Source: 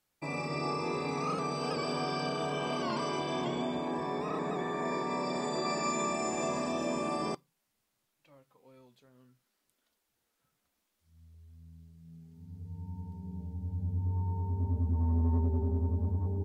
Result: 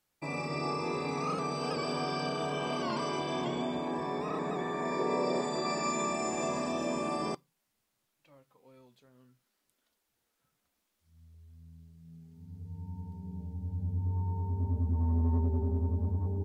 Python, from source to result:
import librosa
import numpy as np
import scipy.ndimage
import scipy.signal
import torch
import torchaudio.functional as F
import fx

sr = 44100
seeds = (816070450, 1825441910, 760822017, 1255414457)

y = fx.peak_eq(x, sr, hz=460.0, db=9.0, octaves=0.74, at=(4.99, 5.42))